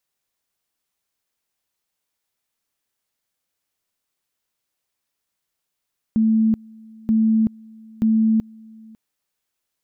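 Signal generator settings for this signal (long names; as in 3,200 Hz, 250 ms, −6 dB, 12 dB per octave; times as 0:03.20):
tone at two levels in turn 221 Hz −13.5 dBFS, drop 26.5 dB, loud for 0.38 s, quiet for 0.55 s, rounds 3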